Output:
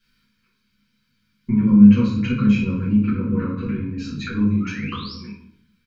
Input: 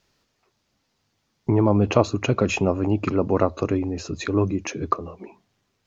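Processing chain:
elliptic band-stop filter 480–1,100 Hz, stop band 40 dB
parametric band 6,600 Hz −12 dB 0.61 octaves
comb filter 1.3 ms, depth 67%
0:03.02–0:03.98: high-frequency loss of the air 240 metres
0:04.60–0:05.14: sound drawn into the spectrogram rise 1,200–5,700 Hz −37 dBFS
hollow resonant body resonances 220/930 Hz, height 15 dB, ringing for 75 ms
convolution reverb RT60 0.60 s, pre-delay 4 ms, DRR −9.5 dB
one half of a high-frequency compander encoder only
level −14 dB

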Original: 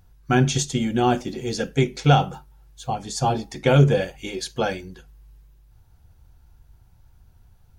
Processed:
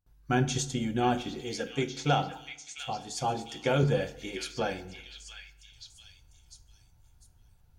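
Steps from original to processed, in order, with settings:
0:01.41–0:03.83: low-shelf EQ 150 Hz −9.5 dB
noise gate with hold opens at −47 dBFS
echo through a band-pass that steps 699 ms, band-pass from 2,600 Hz, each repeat 0.7 octaves, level −4.5 dB
feedback delay network reverb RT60 0.89 s, low-frequency decay 1.05×, high-frequency decay 0.6×, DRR 12 dB
level −7.5 dB

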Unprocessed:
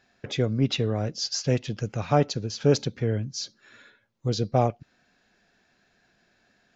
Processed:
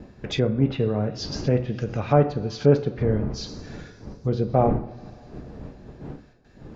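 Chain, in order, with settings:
wind on the microphone 260 Hz −39 dBFS
noise gate with hold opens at −51 dBFS
coupled-rooms reverb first 0.6 s, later 3.7 s, from −20 dB, DRR 7 dB
treble cut that deepens with the level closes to 1,600 Hz, closed at −22 dBFS
level +2.5 dB

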